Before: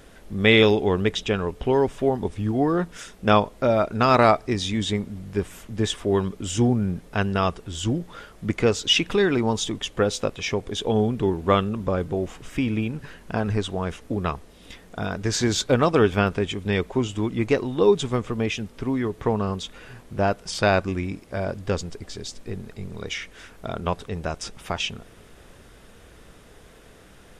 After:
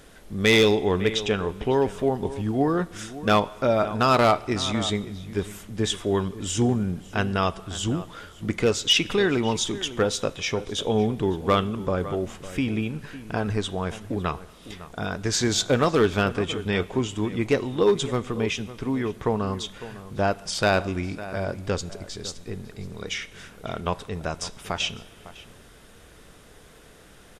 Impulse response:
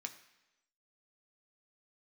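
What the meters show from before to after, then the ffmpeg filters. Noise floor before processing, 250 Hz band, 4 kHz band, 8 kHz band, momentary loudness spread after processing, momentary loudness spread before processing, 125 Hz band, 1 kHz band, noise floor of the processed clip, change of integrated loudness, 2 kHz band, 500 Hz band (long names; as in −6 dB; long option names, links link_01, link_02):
−50 dBFS, −1.5 dB, +0.5 dB, +2.0 dB, 14 LU, 14 LU, −2.0 dB, −1.5 dB, −50 dBFS, −1.5 dB, −1.0 dB, −1.5 dB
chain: -filter_complex "[0:a]asplit=2[link_01][link_02];[link_02]adelay=553.9,volume=-15dB,highshelf=frequency=4000:gain=-12.5[link_03];[link_01][link_03]amix=inputs=2:normalize=0,asoftclip=type=hard:threshold=-10.5dB,asplit=2[link_04][link_05];[1:a]atrim=start_sample=2205,asetrate=25578,aresample=44100,highshelf=frequency=3300:gain=11[link_06];[link_05][link_06]afir=irnorm=-1:irlink=0,volume=-11.5dB[link_07];[link_04][link_07]amix=inputs=2:normalize=0,volume=-2.5dB"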